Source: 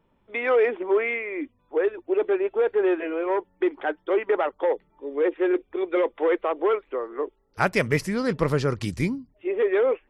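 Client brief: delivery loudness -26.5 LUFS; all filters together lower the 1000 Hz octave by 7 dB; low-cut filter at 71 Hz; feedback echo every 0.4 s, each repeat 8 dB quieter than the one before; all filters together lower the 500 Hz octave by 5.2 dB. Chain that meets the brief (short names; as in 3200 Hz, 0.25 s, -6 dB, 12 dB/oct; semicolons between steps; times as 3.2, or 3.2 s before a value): HPF 71 Hz; bell 500 Hz -5 dB; bell 1000 Hz -8 dB; feedback echo 0.4 s, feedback 40%, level -8 dB; gain +2 dB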